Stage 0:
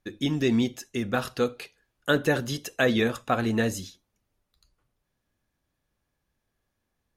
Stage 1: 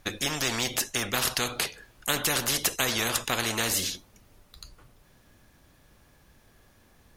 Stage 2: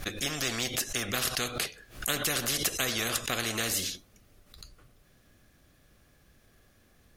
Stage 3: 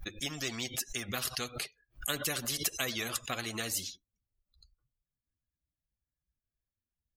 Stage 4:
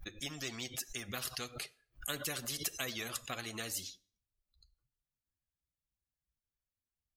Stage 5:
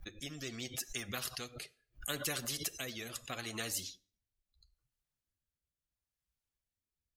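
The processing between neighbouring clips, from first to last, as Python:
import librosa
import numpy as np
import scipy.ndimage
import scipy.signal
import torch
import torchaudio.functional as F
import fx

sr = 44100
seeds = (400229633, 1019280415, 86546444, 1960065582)

y1 = fx.spectral_comp(x, sr, ratio=4.0)
y2 = fx.peak_eq(y1, sr, hz=920.0, db=-12.0, octaves=0.23)
y2 = fx.pre_swell(y2, sr, db_per_s=140.0)
y2 = y2 * 10.0 ** (-3.0 / 20.0)
y3 = fx.bin_expand(y2, sr, power=2.0)
y4 = fx.rev_plate(y3, sr, seeds[0], rt60_s=0.52, hf_ratio=0.8, predelay_ms=0, drr_db=18.0)
y4 = y4 * 10.0 ** (-5.0 / 20.0)
y5 = fx.rotary(y4, sr, hz=0.75)
y5 = y5 * 10.0 ** (2.0 / 20.0)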